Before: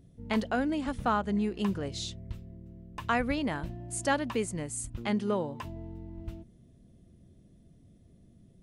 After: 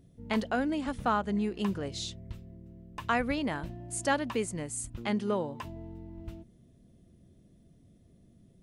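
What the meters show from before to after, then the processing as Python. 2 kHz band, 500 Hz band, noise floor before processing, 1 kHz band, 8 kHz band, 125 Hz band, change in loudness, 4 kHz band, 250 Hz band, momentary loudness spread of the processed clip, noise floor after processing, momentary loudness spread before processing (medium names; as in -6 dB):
0.0 dB, -0.5 dB, -59 dBFS, 0.0 dB, 0.0 dB, -2.0 dB, 0.0 dB, 0.0 dB, -1.0 dB, 17 LU, -61 dBFS, 15 LU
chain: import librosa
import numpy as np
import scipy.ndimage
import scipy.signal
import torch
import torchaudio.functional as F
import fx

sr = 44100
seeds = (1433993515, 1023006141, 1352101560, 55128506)

y = fx.low_shelf(x, sr, hz=140.0, db=-3.5)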